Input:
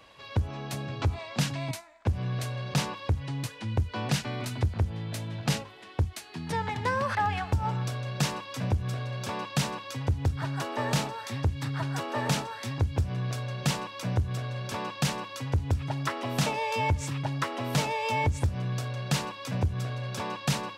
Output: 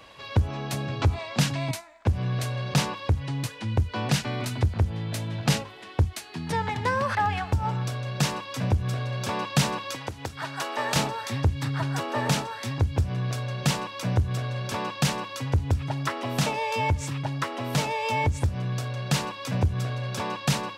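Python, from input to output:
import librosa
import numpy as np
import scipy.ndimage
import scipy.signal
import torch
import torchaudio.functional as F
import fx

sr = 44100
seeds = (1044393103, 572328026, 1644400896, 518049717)

y = fx.highpass(x, sr, hz=790.0, slope=6, at=(9.95, 10.96))
y = fx.rider(y, sr, range_db=5, speed_s=2.0)
y = y * 10.0 ** (3.0 / 20.0)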